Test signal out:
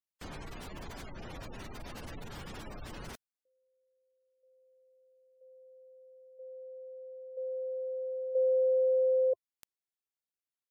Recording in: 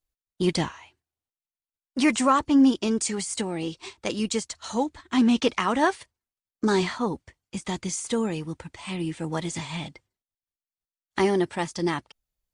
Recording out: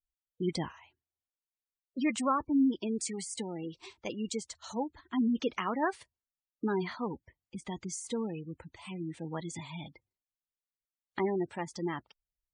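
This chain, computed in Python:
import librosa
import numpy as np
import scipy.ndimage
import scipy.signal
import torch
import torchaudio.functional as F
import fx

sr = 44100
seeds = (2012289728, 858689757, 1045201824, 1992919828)

y = fx.spec_gate(x, sr, threshold_db=-20, keep='strong')
y = y * librosa.db_to_amplitude(-8.5)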